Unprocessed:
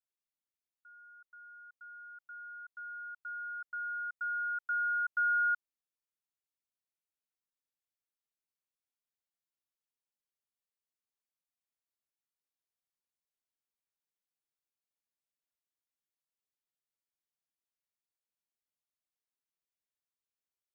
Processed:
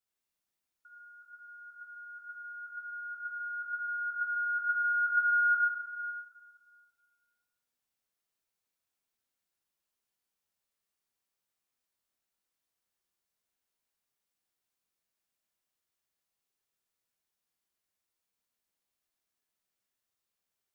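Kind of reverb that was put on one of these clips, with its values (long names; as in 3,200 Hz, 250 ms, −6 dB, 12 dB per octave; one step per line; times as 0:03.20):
dense smooth reverb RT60 1.8 s, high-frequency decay 0.9×, DRR −4 dB
level +2 dB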